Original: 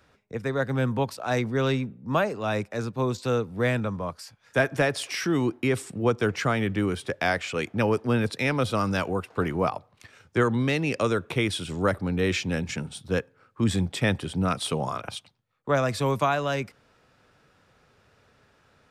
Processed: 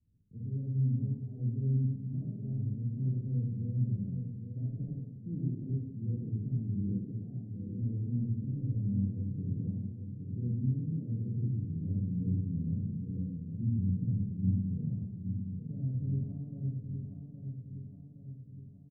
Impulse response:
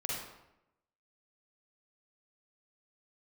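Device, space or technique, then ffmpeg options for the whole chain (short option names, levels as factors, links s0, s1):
club heard from the street: -filter_complex "[0:a]asettb=1/sr,asplit=3[s0][s1][s2];[s0]atrim=end=6.804[s3];[s1]atrim=start=6.8:end=7.75,asetpts=PTS-STARTPTS,afade=t=in:d=0.004:c=qsin,afade=t=out:st=0.946:d=0.004:c=qsin,highpass=f=190:w=0.5412,highpass=f=190:w=1.3066[s4];[s2]atrim=start=7.746[s5];[s3][s4]acrossfade=d=0.004:c1=hsin:c2=qsin[s6];[s6][s5]acrossfade=d=0.004:c1=qsin:c2=hsin,aecho=1:1:817|1634|2451|3268|4085|4902|5719:0.422|0.24|0.137|0.0781|0.0445|0.0254|0.0145,alimiter=limit=0.188:level=0:latency=1:release=292,lowpass=f=210:w=0.5412,lowpass=f=210:w=1.3066[s7];[1:a]atrim=start_sample=2205[s8];[s7][s8]afir=irnorm=-1:irlink=0,volume=0.501"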